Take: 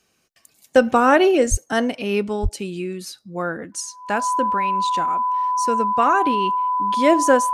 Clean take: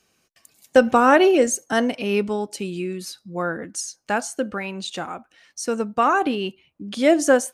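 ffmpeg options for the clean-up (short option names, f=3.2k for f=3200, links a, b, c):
-filter_complex "[0:a]bandreject=f=1k:w=30,asplit=3[a][b][c];[a]afade=t=out:st=1.5:d=0.02[d];[b]highpass=f=140:w=0.5412,highpass=f=140:w=1.3066,afade=t=in:st=1.5:d=0.02,afade=t=out:st=1.62:d=0.02[e];[c]afade=t=in:st=1.62:d=0.02[f];[d][e][f]amix=inputs=3:normalize=0,asplit=3[g][h][i];[g]afade=t=out:st=2.42:d=0.02[j];[h]highpass=f=140:w=0.5412,highpass=f=140:w=1.3066,afade=t=in:st=2.42:d=0.02,afade=t=out:st=2.54:d=0.02[k];[i]afade=t=in:st=2.54:d=0.02[l];[j][k][l]amix=inputs=3:normalize=0"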